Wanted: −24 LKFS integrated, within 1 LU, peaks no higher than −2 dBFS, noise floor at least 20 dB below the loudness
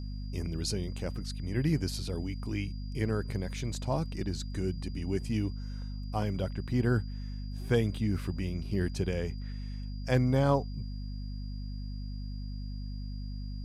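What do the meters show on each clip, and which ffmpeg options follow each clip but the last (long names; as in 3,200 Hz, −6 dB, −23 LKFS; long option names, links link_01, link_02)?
mains hum 50 Hz; hum harmonics up to 250 Hz; level of the hum −35 dBFS; interfering tone 4,800 Hz; level of the tone −55 dBFS; integrated loudness −33.5 LKFS; sample peak −14.0 dBFS; target loudness −24.0 LKFS
→ -af "bandreject=frequency=50:width_type=h:width=6,bandreject=frequency=100:width_type=h:width=6,bandreject=frequency=150:width_type=h:width=6,bandreject=frequency=200:width_type=h:width=6,bandreject=frequency=250:width_type=h:width=6"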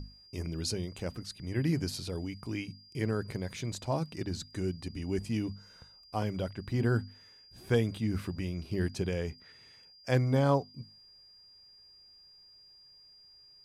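mains hum none found; interfering tone 4,800 Hz; level of the tone −55 dBFS
→ -af "bandreject=frequency=4800:width=30"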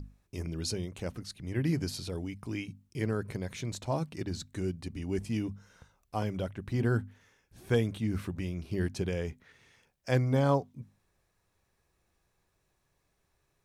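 interfering tone none found; integrated loudness −33.5 LKFS; sample peak −15.0 dBFS; target loudness −24.0 LKFS
→ -af "volume=9.5dB"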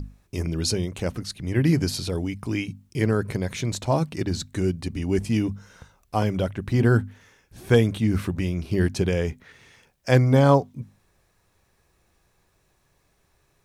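integrated loudness −24.0 LKFS; sample peak −5.5 dBFS; background noise floor −67 dBFS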